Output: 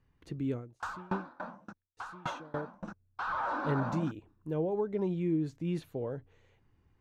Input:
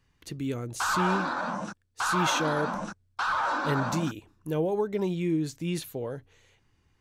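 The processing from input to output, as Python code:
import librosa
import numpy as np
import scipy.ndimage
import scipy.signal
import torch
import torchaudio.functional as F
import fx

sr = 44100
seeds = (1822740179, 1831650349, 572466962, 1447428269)

y = fx.lowpass(x, sr, hz=1000.0, slope=6)
y = fx.rider(y, sr, range_db=3, speed_s=2.0)
y = fx.tremolo_decay(y, sr, direction='decaying', hz=3.5, depth_db=28, at=(0.54, 2.88))
y = y * 10.0 ** (-3.0 / 20.0)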